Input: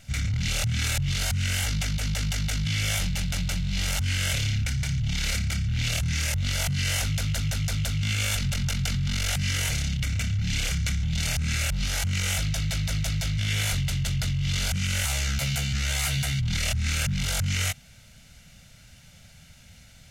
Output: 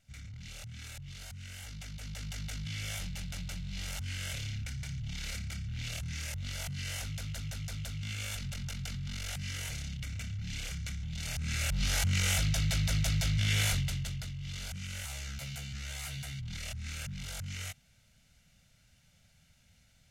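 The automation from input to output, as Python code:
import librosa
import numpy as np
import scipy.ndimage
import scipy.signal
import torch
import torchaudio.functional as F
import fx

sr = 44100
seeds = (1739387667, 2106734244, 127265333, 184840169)

y = fx.gain(x, sr, db=fx.line((1.55, -19.5), (2.4, -12.0), (11.18, -12.0), (11.89, -2.5), (13.66, -2.5), (14.3, -14.0)))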